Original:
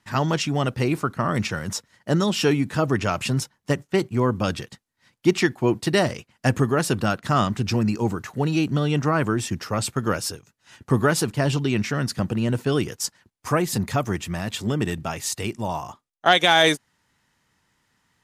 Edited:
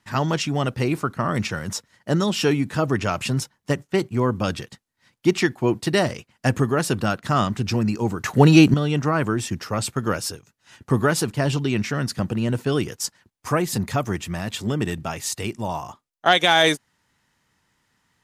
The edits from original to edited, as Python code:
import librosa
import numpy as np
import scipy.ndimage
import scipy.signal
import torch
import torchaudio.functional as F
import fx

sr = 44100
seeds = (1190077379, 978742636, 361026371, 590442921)

y = fx.edit(x, sr, fx.clip_gain(start_s=8.24, length_s=0.5, db=10.0), tone=tone)